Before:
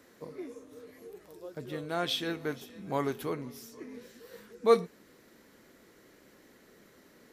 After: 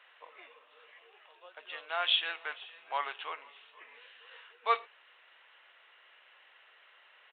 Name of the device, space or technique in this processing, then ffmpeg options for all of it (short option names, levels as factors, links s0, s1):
musical greeting card: -af "lowshelf=f=120:g=-8.5,aresample=8000,aresample=44100,highpass=f=780:w=0.5412,highpass=f=780:w=1.3066,equalizer=f=2800:t=o:w=0.28:g=11.5,volume=1.41"